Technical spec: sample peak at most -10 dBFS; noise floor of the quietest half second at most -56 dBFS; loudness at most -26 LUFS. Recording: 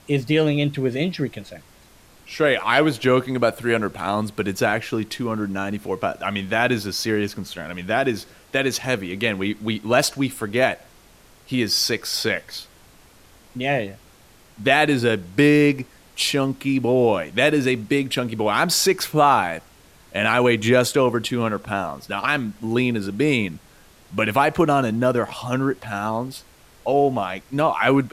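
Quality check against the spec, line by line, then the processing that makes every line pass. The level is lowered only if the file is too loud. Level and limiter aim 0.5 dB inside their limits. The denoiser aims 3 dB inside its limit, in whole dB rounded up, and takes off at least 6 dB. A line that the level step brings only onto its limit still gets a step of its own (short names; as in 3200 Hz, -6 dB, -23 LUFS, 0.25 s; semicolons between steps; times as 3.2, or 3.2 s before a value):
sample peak -3.5 dBFS: fail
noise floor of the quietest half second -51 dBFS: fail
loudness -21.0 LUFS: fail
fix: gain -5.5 dB; limiter -10.5 dBFS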